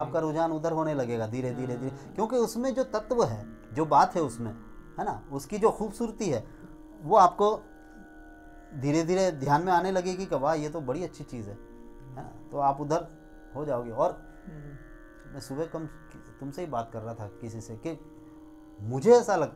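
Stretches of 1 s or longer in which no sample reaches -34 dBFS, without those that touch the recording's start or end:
7.58–8.76 s

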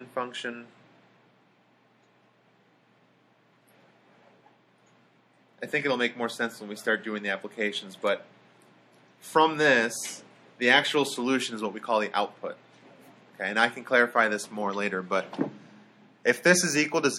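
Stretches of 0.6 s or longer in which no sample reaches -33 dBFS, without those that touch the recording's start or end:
0.59–5.63 s
8.17–9.28 s
12.53–13.40 s
15.49–16.26 s

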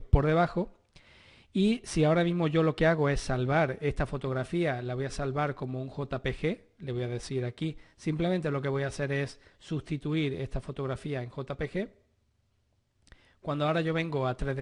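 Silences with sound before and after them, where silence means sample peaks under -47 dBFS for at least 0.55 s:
11.89–13.07 s

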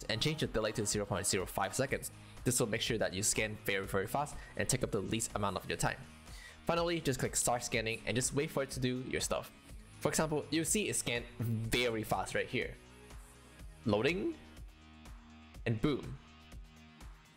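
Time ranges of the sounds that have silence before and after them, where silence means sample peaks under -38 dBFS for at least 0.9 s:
13.86–14.31 s
15.66–16.13 s

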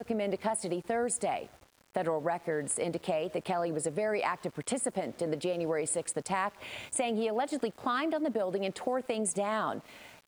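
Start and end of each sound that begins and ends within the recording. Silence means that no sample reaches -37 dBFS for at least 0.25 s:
1.95–9.79 s

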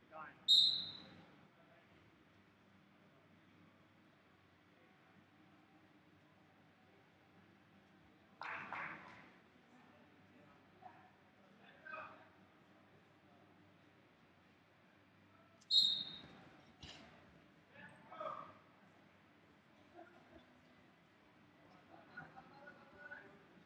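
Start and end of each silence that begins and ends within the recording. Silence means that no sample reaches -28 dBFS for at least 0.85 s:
0.70–15.73 s

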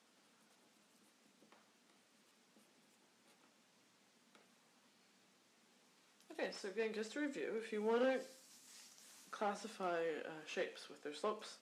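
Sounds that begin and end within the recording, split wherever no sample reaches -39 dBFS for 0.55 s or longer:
6.39–8.18 s

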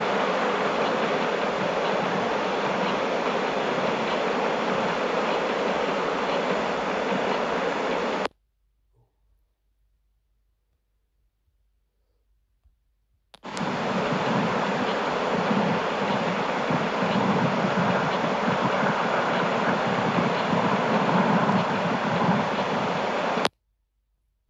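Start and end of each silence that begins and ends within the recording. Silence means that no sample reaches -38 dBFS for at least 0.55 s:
8.27–13.34 s

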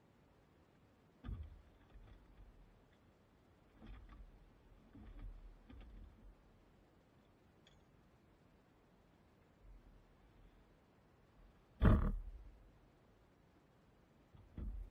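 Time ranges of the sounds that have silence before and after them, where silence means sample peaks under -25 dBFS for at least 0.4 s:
11.84–11.94 s

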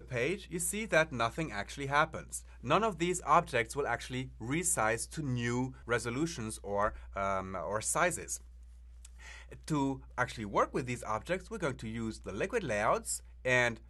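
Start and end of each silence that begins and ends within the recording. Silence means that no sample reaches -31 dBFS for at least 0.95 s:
8.35–9.70 s

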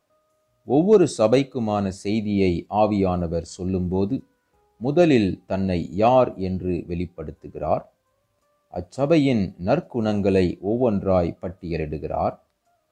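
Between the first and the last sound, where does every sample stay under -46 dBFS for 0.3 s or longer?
4.23–4.80 s
7.88–8.71 s

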